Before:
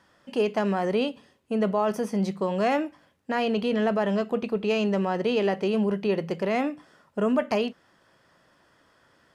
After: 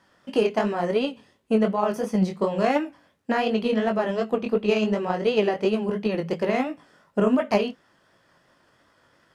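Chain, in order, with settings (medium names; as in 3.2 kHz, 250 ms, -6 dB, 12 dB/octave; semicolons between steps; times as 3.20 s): chorus 2.8 Hz, delay 18 ms, depth 5.7 ms; transient shaper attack +7 dB, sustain 0 dB; trim +3 dB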